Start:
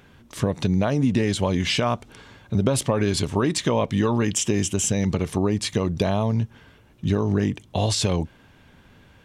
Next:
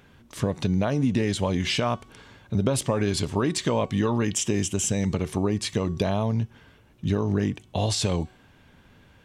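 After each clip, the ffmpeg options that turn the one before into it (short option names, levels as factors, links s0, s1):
-af "bandreject=f=373.2:t=h:w=4,bandreject=f=746.4:t=h:w=4,bandreject=f=1119.6:t=h:w=4,bandreject=f=1492.8:t=h:w=4,bandreject=f=1866:t=h:w=4,bandreject=f=2239.2:t=h:w=4,bandreject=f=2612.4:t=h:w=4,bandreject=f=2985.6:t=h:w=4,bandreject=f=3358.8:t=h:w=4,bandreject=f=3732:t=h:w=4,bandreject=f=4105.2:t=h:w=4,bandreject=f=4478.4:t=h:w=4,bandreject=f=4851.6:t=h:w=4,bandreject=f=5224.8:t=h:w=4,bandreject=f=5598:t=h:w=4,bandreject=f=5971.2:t=h:w=4,bandreject=f=6344.4:t=h:w=4,bandreject=f=6717.6:t=h:w=4,bandreject=f=7090.8:t=h:w=4,bandreject=f=7464:t=h:w=4,bandreject=f=7837.2:t=h:w=4,bandreject=f=8210.4:t=h:w=4,bandreject=f=8583.6:t=h:w=4,volume=0.75"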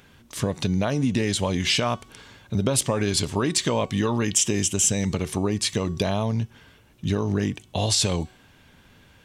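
-af "highshelf=f=2600:g=7.5"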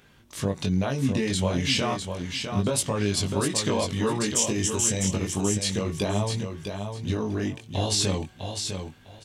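-filter_complex "[0:a]flanger=delay=19.5:depth=3.5:speed=0.34,asplit=2[s0][s1];[s1]aecho=0:1:653|1306|1959:0.473|0.0946|0.0189[s2];[s0][s2]amix=inputs=2:normalize=0"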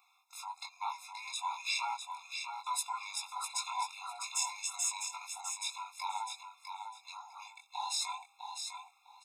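-af "afftfilt=real='real(if(between(b,1,1008),(2*floor((b-1)/24)+1)*24-b,b),0)':imag='imag(if(between(b,1,1008),(2*floor((b-1)/24)+1)*24-b,b),0)*if(between(b,1,1008),-1,1)':win_size=2048:overlap=0.75,afftfilt=real='re*eq(mod(floor(b*sr/1024/690),2),1)':imag='im*eq(mod(floor(b*sr/1024/690),2),1)':win_size=1024:overlap=0.75,volume=0.501"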